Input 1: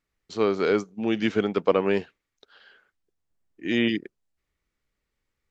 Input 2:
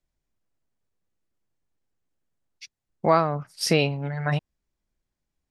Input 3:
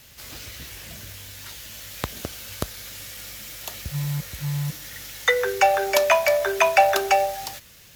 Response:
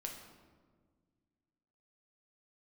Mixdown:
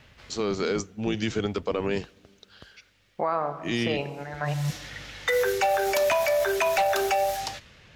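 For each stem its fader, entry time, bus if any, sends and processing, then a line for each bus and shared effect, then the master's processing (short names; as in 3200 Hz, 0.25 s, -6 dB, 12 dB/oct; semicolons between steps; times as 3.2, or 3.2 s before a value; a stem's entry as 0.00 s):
-2.0 dB, 0.00 s, send -23 dB, octaver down 1 oct, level -4 dB; tone controls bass -1 dB, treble +14 dB
-2.0 dB, 0.15 s, send -4.5 dB, band-pass 980 Hz, Q 0.72
+2.0 dB, 0.00 s, no send, low-pass opened by the level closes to 2300 Hz, open at -20 dBFS; wavefolder -9.5 dBFS; auto duck -24 dB, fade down 0.90 s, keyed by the first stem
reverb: on, RT60 1.6 s, pre-delay 6 ms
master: limiter -16 dBFS, peak gain reduction 8.5 dB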